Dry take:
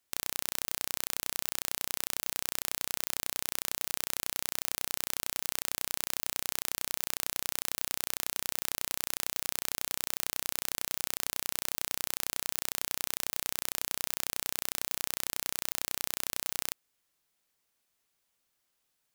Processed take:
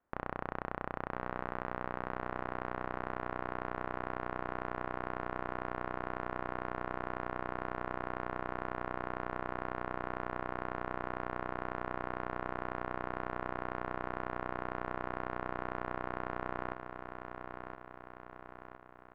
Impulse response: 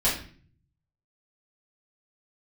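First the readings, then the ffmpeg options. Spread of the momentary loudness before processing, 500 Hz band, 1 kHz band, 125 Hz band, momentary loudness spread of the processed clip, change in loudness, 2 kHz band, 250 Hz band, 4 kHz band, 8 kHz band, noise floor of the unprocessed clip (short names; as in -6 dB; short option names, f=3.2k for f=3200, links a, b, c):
0 LU, +8.5 dB, +8.0 dB, +7.0 dB, 7 LU, -7.0 dB, -1.0 dB, +8.5 dB, -23.5 dB, under -40 dB, -79 dBFS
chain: -filter_complex "[0:a]lowpass=f=1.4k:w=0.5412,lowpass=f=1.4k:w=1.3066,aecho=1:1:1015|2030|3045|4060|5075|6090:0.447|0.237|0.125|0.0665|0.0352|0.0187,asplit=2[a][b];[1:a]atrim=start_sample=2205,asetrate=48510,aresample=44100[c];[b][c]afir=irnorm=-1:irlink=0,volume=-31.5dB[d];[a][d]amix=inputs=2:normalize=0,volume=7.5dB"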